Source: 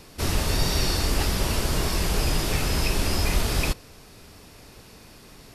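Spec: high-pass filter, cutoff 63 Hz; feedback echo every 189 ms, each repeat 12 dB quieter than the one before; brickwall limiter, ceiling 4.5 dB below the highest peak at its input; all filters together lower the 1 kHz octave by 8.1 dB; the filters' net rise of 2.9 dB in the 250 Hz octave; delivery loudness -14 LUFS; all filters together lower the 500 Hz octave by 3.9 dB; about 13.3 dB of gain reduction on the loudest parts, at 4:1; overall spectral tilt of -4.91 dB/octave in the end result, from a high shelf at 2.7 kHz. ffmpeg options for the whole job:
-af "highpass=63,equalizer=f=250:t=o:g=6,equalizer=f=500:t=o:g=-5.5,equalizer=f=1000:t=o:g=-8,highshelf=f=2700:g=-7.5,acompressor=threshold=0.0112:ratio=4,alimiter=level_in=2.51:limit=0.0631:level=0:latency=1,volume=0.398,aecho=1:1:189|378|567:0.251|0.0628|0.0157,volume=28.2"

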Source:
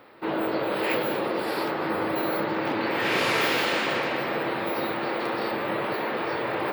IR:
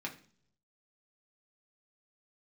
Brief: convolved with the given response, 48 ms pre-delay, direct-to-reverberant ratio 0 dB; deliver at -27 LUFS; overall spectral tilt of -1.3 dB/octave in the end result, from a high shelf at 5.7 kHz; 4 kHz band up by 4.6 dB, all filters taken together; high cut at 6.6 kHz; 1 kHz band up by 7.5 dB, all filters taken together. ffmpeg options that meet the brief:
-filter_complex "[0:a]lowpass=6600,equalizer=f=1000:t=o:g=9,equalizer=f=4000:t=o:g=8,highshelf=f=5700:g=-6.5,asplit=2[s0][s1];[1:a]atrim=start_sample=2205,adelay=48[s2];[s1][s2]afir=irnorm=-1:irlink=0,volume=0.891[s3];[s0][s3]amix=inputs=2:normalize=0,volume=0.422"

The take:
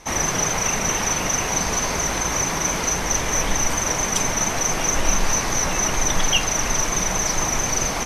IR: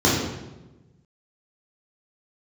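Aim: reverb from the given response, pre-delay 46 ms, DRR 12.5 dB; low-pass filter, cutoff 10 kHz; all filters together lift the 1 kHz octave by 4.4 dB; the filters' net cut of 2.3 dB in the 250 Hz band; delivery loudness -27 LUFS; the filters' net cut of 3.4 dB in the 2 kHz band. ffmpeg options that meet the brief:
-filter_complex "[0:a]lowpass=10000,equalizer=f=250:t=o:g=-3.5,equalizer=f=1000:t=o:g=7,equalizer=f=2000:t=o:g=-6.5,asplit=2[s0][s1];[1:a]atrim=start_sample=2205,adelay=46[s2];[s1][s2]afir=irnorm=-1:irlink=0,volume=0.0237[s3];[s0][s3]amix=inputs=2:normalize=0,volume=0.473"

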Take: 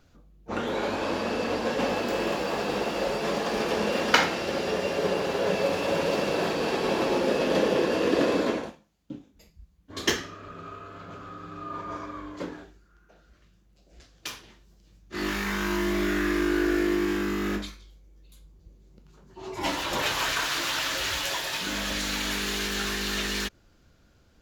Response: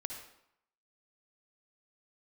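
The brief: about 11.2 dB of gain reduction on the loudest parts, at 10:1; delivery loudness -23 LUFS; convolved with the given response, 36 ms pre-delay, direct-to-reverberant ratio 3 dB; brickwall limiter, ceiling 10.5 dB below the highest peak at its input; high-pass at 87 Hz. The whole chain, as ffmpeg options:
-filter_complex "[0:a]highpass=87,acompressor=threshold=0.0447:ratio=10,alimiter=limit=0.0668:level=0:latency=1,asplit=2[s0][s1];[1:a]atrim=start_sample=2205,adelay=36[s2];[s1][s2]afir=irnorm=-1:irlink=0,volume=0.794[s3];[s0][s3]amix=inputs=2:normalize=0,volume=2.66"

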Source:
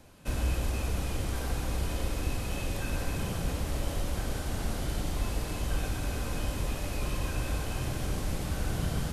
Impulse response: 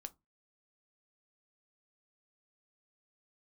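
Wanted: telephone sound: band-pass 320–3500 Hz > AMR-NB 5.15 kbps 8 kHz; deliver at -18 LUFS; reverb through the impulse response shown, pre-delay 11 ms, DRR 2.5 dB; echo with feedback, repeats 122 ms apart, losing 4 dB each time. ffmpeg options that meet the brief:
-filter_complex "[0:a]aecho=1:1:122|244|366|488|610|732|854|976|1098:0.631|0.398|0.25|0.158|0.0994|0.0626|0.0394|0.0249|0.0157,asplit=2[s0][s1];[1:a]atrim=start_sample=2205,adelay=11[s2];[s1][s2]afir=irnorm=-1:irlink=0,volume=1.33[s3];[s0][s3]amix=inputs=2:normalize=0,highpass=320,lowpass=3500,volume=14.1" -ar 8000 -c:a libopencore_amrnb -b:a 5150

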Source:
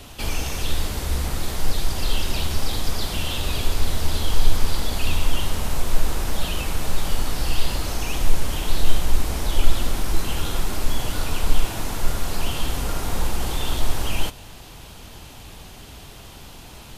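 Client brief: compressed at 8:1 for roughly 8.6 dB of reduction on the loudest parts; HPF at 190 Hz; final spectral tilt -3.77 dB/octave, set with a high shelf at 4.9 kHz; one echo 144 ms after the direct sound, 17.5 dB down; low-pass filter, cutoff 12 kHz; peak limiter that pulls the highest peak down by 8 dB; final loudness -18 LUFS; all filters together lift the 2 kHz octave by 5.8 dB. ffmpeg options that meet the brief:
-af "highpass=190,lowpass=12000,equalizer=f=2000:t=o:g=9,highshelf=f=4900:g=-6.5,acompressor=threshold=0.02:ratio=8,alimiter=level_in=2:limit=0.0631:level=0:latency=1,volume=0.501,aecho=1:1:144:0.133,volume=10.6"

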